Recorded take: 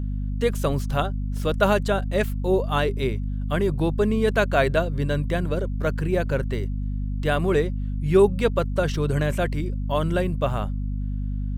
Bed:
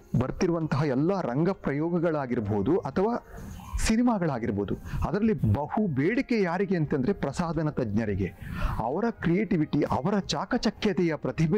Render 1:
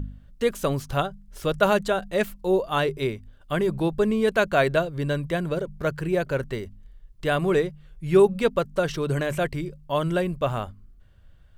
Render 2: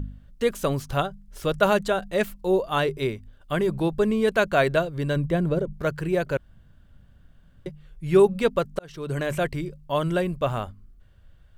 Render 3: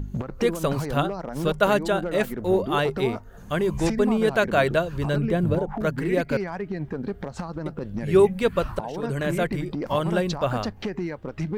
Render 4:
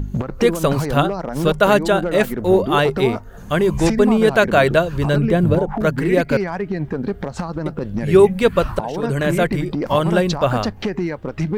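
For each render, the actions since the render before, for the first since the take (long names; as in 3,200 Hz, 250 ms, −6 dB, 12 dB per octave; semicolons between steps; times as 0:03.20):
hum removal 50 Hz, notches 5
0:05.16–0:05.73: tilt shelving filter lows +5.5 dB, about 710 Hz; 0:06.37–0:07.66: fill with room tone; 0:08.79–0:09.29: fade in
mix in bed −4.5 dB
level +7 dB; brickwall limiter −2 dBFS, peak gain reduction 2.5 dB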